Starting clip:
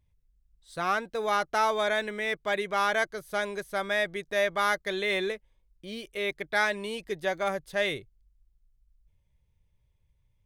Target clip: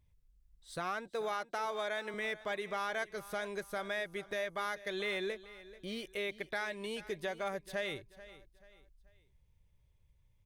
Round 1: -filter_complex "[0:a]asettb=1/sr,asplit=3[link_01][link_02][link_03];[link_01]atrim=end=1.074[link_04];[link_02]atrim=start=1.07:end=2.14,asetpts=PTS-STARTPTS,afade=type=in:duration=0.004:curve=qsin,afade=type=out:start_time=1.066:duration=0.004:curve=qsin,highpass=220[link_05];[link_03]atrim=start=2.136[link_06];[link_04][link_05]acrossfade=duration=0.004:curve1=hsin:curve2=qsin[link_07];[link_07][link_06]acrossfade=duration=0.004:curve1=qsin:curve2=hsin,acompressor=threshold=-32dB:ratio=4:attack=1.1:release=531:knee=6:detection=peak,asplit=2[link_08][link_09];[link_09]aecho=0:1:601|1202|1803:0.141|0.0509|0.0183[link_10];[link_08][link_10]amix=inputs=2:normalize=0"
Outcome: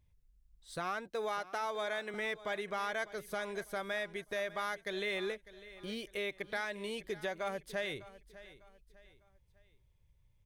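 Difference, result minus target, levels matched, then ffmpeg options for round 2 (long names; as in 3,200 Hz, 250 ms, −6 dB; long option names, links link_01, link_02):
echo 166 ms late
-filter_complex "[0:a]asettb=1/sr,asplit=3[link_01][link_02][link_03];[link_01]atrim=end=1.074[link_04];[link_02]atrim=start=1.07:end=2.14,asetpts=PTS-STARTPTS,afade=type=in:duration=0.004:curve=qsin,afade=type=out:start_time=1.066:duration=0.004:curve=qsin,highpass=220[link_05];[link_03]atrim=start=2.136[link_06];[link_04][link_05]acrossfade=duration=0.004:curve1=hsin:curve2=qsin[link_07];[link_07][link_06]acrossfade=duration=0.004:curve1=qsin:curve2=hsin,acompressor=threshold=-32dB:ratio=4:attack=1.1:release=531:knee=6:detection=peak,asplit=2[link_08][link_09];[link_09]aecho=0:1:435|870|1305:0.141|0.0509|0.0183[link_10];[link_08][link_10]amix=inputs=2:normalize=0"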